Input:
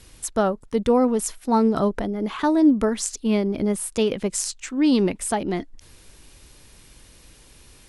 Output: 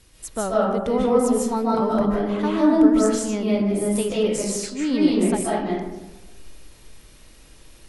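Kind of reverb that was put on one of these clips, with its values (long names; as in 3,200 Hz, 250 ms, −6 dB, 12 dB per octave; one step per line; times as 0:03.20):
comb and all-pass reverb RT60 1.1 s, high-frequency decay 0.45×, pre-delay 110 ms, DRR −6 dB
level −6 dB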